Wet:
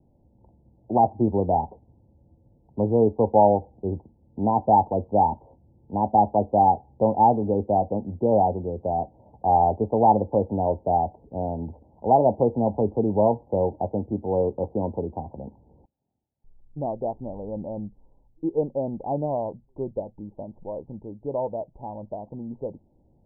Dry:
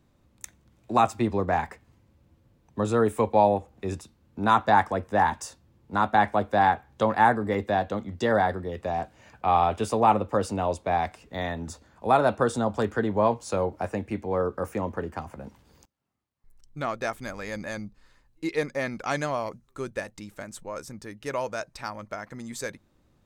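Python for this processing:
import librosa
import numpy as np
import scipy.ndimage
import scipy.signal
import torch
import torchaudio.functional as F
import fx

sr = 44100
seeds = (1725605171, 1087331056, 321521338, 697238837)

y = scipy.signal.sosfilt(scipy.signal.butter(16, 910.0, 'lowpass', fs=sr, output='sos'), x)
y = y * 10.0 ** (3.5 / 20.0)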